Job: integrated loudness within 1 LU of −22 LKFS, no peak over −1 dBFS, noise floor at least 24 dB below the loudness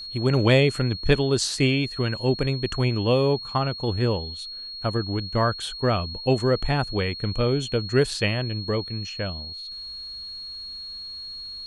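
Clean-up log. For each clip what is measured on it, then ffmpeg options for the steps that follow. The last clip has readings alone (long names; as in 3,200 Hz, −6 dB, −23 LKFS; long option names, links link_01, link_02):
interfering tone 4,300 Hz; level of the tone −34 dBFS; integrated loudness −25.0 LKFS; sample peak −7.0 dBFS; target loudness −22.0 LKFS
→ -af "bandreject=frequency=4300:width=30"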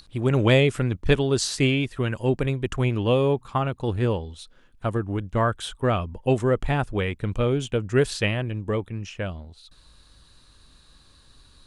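interfering tone none found; integrated loudness −24.5 LKFS; sample peak −7.0 dBFS; target loudness −22.0 LKFS
→ -af "volume=2.5dB"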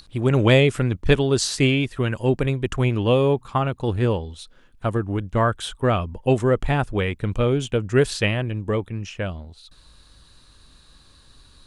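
integrated loudness −22.0 LKFS; sample peak −4.5 dBFS; background noise floor −53 dBFS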